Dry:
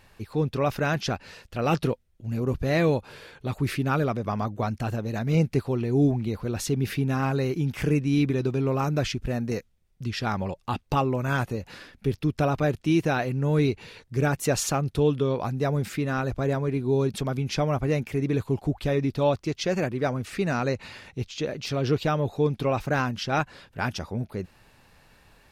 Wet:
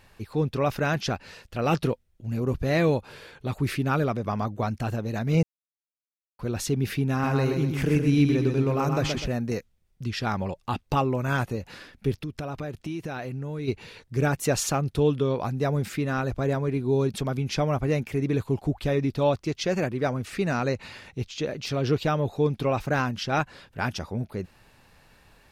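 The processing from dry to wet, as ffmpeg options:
-filter_complex "[0:a]asettb=1/sr,asplit=3[a][b][c];[a]atrim=end=7.114[d];[b]atrim=start=7.11:end=9.28,asetpts=PTS-STARTPTS,afade=t=in:d=0.004:c=qsin,afade=t=out:st=2.166:d=0.004:c=qsin,aecho=1:1:125|250|375|500:0.562|0.202|0.0729|0.0262,atrim=end_sample=95697[e];[c]atrim=start=9.276[f];[d][e]acrossfade=d=0.004:c1=hsin:c2=qsin[g];[g][f]acrossfade=d=0.004:c1=qsin:c2=hsin,asplit=3[h][i][j];[h]afade=t=out:st=12.2:d=0.02[k];[i]acompressor=threshold=-30dB:ratio=5:attack=3.2:release=140:knee=1:detection=peak,afade=t=in:st=12.2:d=0.02,afade=t=out:st=13.67:d=0.02[l];[j]afade=t=in:st=13.67:d=0.02[m];[k][l][m]amix=inputs=3:normalize=0,asplit=3[n][o][p];[n]atrim=end=5.43,asetpts=PTS-STARTPTS,afade=t=out:st=5.426:d=0.004:c=hsin[q];[o]atrim=start=5.43:end=6.39,asetpts=PTS-STARTPTS,volume=0[r];[p]atrim=start=6.39,asetpts=PTS-STARTPTS,afade=t=in:d=0.004:c=hsin[s];[q][r][s]concat=n=3:v=0:a=1"

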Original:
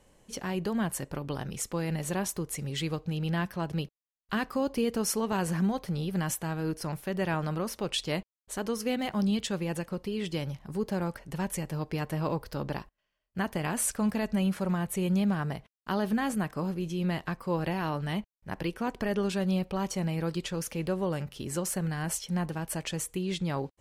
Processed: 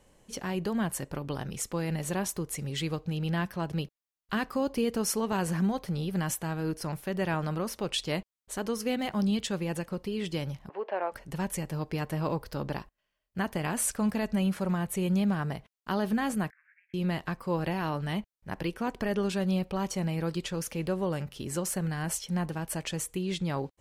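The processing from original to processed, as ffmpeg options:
-filter_complex "[0:a]asettb=1/sr,asplit=3[a][b][c];[a]atrim=end=10.694[d];[b]atrim=start=10.69:end=11.12,asetpts=PTS-STARTPTS,afade=t=in:d=0.004:c=qsin,afade=t=out:st=0.426:d=0.004:c=qsin,highpass=f=410:w=0.5412,highpass=f=410:w=1.3066,equalizer=f=670:t=q:w=4:g=10,equalizer=f=970:t=q:w=4:g=5,equalizer=f=1.8k:t=q:w=4:g=4,equalizer=f=2.7k:t=q:w=4:g=5,lowpass=f=2.8k:w=0.5412,lowpass=f=2.8k:w=1.3066[e];[c]atrim=start=11.116[f];[d][e]acrossfade=d=0.004:c1=hsin:c2=qsin[g];[g][f]acrossfade=d=0.004:c1=qsin:c2=hsin,asettb=1/sr,asplit=3[h][i][j];[h]atrim=end=16.504[k];[i]atrim=start=16.5:end=16.94,asetpts=PTS-STARTPTS,afade=t=in:d=0.004:c=qsin,afade=t=out:st=0.436:d=0.004:c=qsin,asuperpass=centerf=1900:order=8:qfactor=2.8[l];[j]atrim=start=16.936[m];[k][l]acrossfade=d=0.004:c1=hsin:c2=qsin[n];[n][m]acrossfade=d=0.004:c1=qsin:c2=hsin"

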